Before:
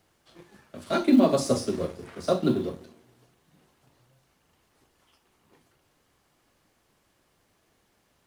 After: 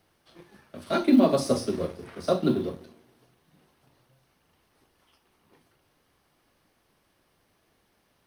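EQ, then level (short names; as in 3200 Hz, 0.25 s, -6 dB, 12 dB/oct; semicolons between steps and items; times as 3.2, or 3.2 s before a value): bell 7200 Hz -12.5 dB 0.21 oct; notches 60/120 Hz; 0.0 dB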